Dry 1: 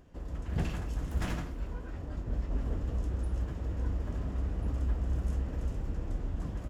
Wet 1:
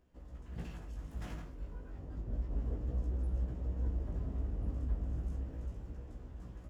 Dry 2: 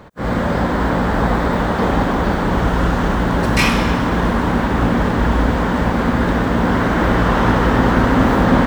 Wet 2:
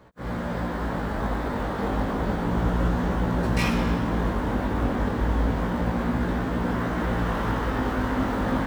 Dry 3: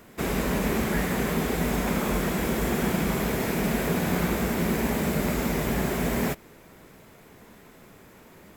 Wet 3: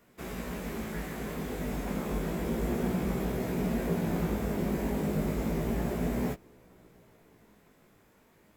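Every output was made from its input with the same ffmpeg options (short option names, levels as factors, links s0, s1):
-filter_complex "[0:a]acrossover=split=800[s0][s1];[s0]dynaudnorm=f=290:g=13:m=2.51[s2];[s1]acrusher=bits=5:mode=log:mix=0:aa=0.000001[s3];[s2][s3]amix=inputs=2:normalize=0,flanger=delay=16:depth=3.8:speed=0.31,volume=0.355"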